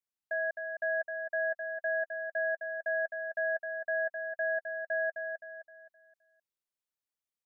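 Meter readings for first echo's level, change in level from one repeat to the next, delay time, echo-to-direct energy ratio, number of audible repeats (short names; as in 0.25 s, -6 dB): -6.0 dB, -8.0 dB, 0.26 s, -5.5 dB, 4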